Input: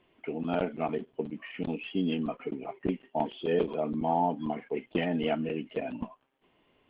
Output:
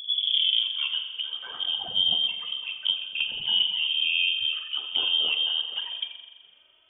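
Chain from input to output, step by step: tape start at the beginning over 0.91 s; dynamic EQ 200 Hz, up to +4 dB, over -38 dBFS, Q 0.71; in parallel at +1 dB: compressor 5:1, threshold -38 dBFS, peak gain reduction 16 dB; on the sum: envelope flanger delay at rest 3.4 ms, full sweep at -21 dBFS; air absorption 200 m; pre-echo 0.188 s -13 dB; spring tank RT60 1.6 s, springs 42 ms, chirp 70 ms, DRR 6.5 dB; inverted band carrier 3400 Hz

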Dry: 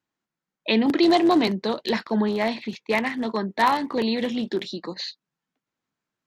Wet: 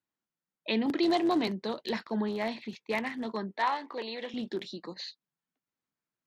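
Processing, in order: 3.56–4.34 BPF 460–5100 Hz; gain -8.5 dB

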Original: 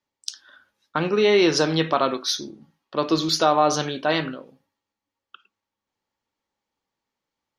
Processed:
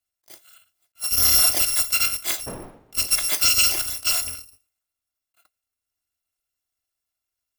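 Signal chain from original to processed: FFT order left unsorted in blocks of 256 samples; 2.46–3.06 wind noise 550 Hz -38 dBFS; attack slew limiter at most 490 dB/s

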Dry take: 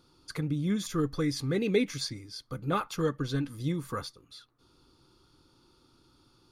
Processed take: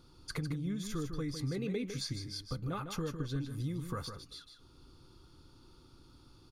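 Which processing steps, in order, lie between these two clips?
low shelf 120 Hz +11 dB; compressor 5:1, threshold -35 dBFS, peak gain reduction 14.5 dB; echo 0.154 s -8 dB

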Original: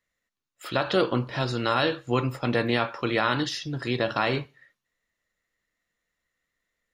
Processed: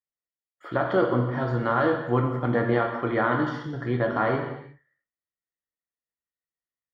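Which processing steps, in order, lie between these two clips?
0.81–2.72 block floating point 7-bit; HPF 44 Hz; gate with hold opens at -51 dBFS; polynomial smoothing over 41 samples; non-linear reverb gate 0.37 s falling, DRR 2.5 dB

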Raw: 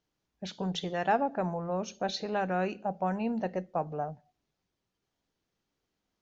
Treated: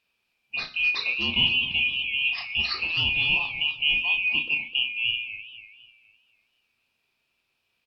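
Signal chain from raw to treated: four-band scrambler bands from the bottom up 2413; in parallel at +1 dB: limiter -26 dBFS, peak gain reduction 10.5 dB; on the sum: doubler 27 ms -6.5 dB; FDN reverb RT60 0.54 s, low-frequency decay 1.5×, high-frequency decay 0.9×, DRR 14 dB; varispeed -21%; warbling echo 0.25 s, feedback 42%, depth 186 cents, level -12 dB

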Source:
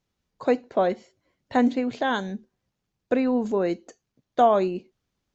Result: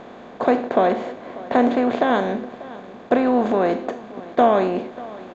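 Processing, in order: per-bin compression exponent 0.4; high shelf 5100 Hz -11.5 dB; echo 0.591 s -19 dB

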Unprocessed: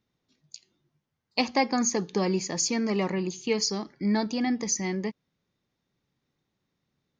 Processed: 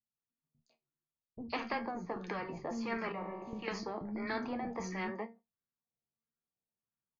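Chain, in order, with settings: notches 50/100/150/200 Hz; gate -47 dBFS, range -30 dB; vocal rider; tone controls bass +3 dB, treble +2 dB; 1.62–2.42 compressor, threshold -27 dBFS, peak gain reduction 6.5 dB; LFO low-pass sine 1.5 Hz 650–1600 Hz; resonator 230 Hz, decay 0.2 s, harmonics all, mix 70%; flange 0.58 Hz, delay 9.2 ms, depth 4.9 ms, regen +61%; 2.97–3.53 resonator 50 Hz, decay 0.95 s, harmonics all, mix 80%; three bands offset in time lows, highs, mids 0.12/0.15 s, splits 270/5400 Hz; spectral compressor 2:1; gain +2.5 dB

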